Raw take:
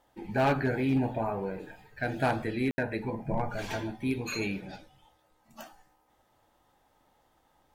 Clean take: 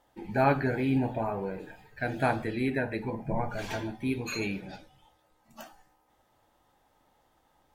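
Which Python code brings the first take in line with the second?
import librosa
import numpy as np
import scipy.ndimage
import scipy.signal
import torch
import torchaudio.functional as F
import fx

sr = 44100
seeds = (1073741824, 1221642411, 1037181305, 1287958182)

y = fx.fix_declip(x, sr, threshold_db=-20.0)
y = fx.fix_ambience(y, sr, seeds[0], print_start_s=5.96, print_end_s=6.46, start_s=2.71, end_s=2.78)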